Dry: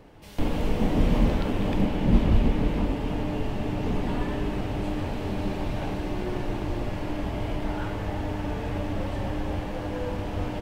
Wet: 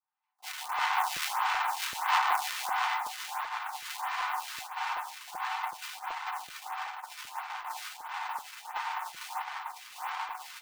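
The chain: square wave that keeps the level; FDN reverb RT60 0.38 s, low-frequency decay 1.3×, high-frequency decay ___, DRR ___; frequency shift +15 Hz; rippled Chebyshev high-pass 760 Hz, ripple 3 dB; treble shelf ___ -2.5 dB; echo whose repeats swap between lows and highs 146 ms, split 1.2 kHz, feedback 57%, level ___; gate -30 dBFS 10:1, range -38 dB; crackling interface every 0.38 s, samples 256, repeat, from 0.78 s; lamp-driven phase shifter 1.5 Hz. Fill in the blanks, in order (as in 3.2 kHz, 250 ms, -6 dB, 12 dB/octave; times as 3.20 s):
0.4×, -2 dB, 3.2 kHz, -3.5 dB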